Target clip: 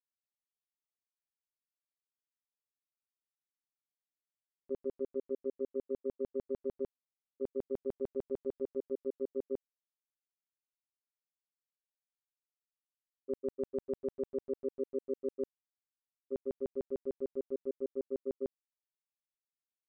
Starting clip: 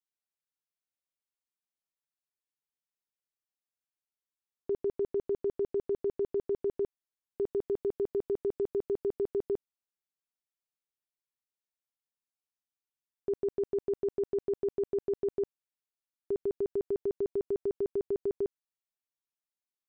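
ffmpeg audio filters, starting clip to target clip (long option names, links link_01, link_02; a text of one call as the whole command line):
ffmpeg -i in.wav -af "agate=range=-18dB:threshold=-30dB:ratio=16:detection=peak,tremolo=f=140:d=0.857" out.wav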